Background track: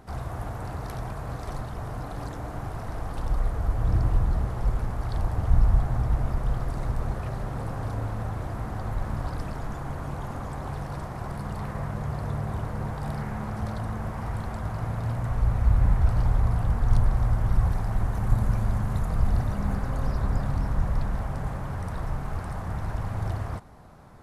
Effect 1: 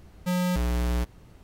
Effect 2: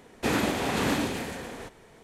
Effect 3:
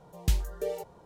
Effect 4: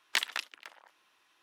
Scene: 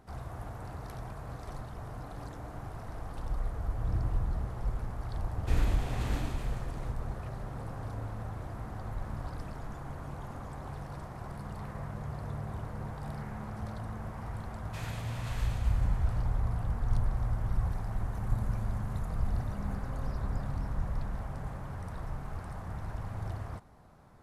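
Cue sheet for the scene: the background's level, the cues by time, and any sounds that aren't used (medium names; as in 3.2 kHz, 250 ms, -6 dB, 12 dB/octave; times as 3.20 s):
background track -8 dB
5.24 s: add 2 -14 dB
14.50 s: add 2 -15 dB + high-pass 1.2 kHz
not used: 1, 3, 4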